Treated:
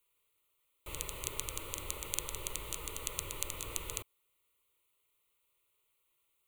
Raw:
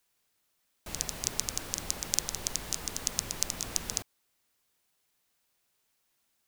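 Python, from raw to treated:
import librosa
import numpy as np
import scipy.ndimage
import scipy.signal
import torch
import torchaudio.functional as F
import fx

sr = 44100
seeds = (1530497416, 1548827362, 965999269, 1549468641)

y = fx.fixed_phaser(x, sr, hz=1100.0, stages=8)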